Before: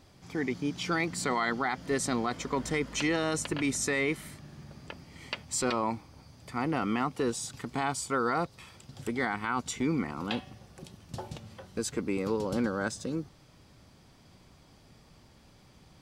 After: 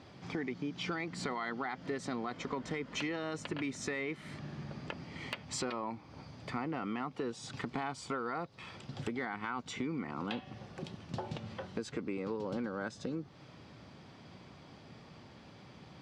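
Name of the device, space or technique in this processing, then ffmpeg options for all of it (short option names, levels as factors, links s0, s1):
AM radio: -af "highpass=110,lowpass=3900,acompressor=threshold=0.01:ratio=6,asoftclip=type=tanh:threshold=0.0398,volume=1.88"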